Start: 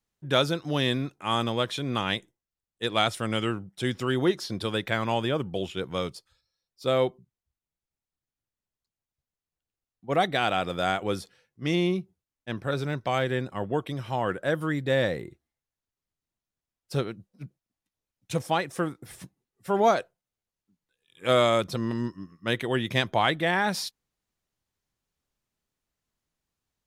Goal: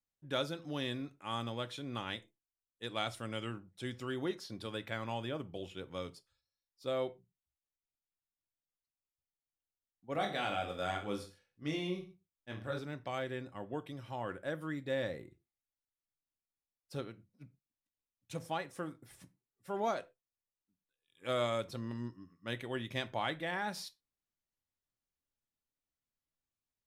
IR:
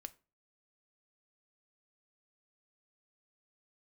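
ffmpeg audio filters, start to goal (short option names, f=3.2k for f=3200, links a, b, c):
-filter_complex "[0:a]asettb=1/sr,asplit=3[a][b][c];[a]atrim=end=10.134[d];[b]atrim=start=10.13:end=12.79,asetpts=PTS-STARTPTS,afade=t=in:d=0.004:c=qsin,afade=t=out:st=2.656:d=0.004:c=qsin,aecho=1:1:20|44|72.8|107.4|148.8:0.631|0.398|0.251|0.158|0.1,atrim=end_sample=117306[e];[c]atrim=start=12.786[f];[d][e]acrossfade=d=0.004:c1=hsin:c2=qsin[g];[g][f]acrossfade=d=0.004:c1=qsin:c2=hsin[h];[1:a]atrim=start_sample=2205,afade=t=out:st=0.18:d=0.01,atrim=end_sample=8379[i];[h][i]afir=irnorm=-1:irlink=0,volume=-7dB"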